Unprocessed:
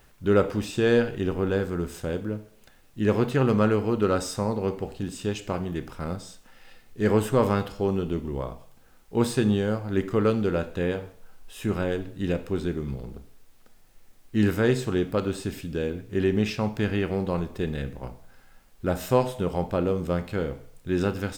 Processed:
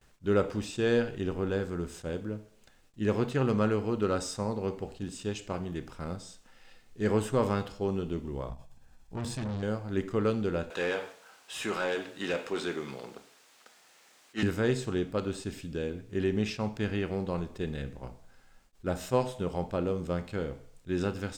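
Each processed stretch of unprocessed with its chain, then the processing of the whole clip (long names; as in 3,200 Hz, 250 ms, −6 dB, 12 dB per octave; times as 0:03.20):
0:08.49–0:09.63: low-shelf EQ 190 Hz +9 dB + comb filter 1.2 ms, depth 42% + tube saturation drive 26 dB, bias 0.6
0:10.70–0:14.43: high-pass filter 110 Hz + spectral tilt +3 dB per octave + mid-hump overdrive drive 20 dB, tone 1,600 Hz, clips at −13.5 dBFS
whole clip: noise gate with hold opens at −48 dBFS; drawn EQ curve 2,000 Hz 0 dB, 7,700 Hz +3 dB, 12,000 Hz −6 dB; level that may rise only so fast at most 470 dB per second; level −5.5 dB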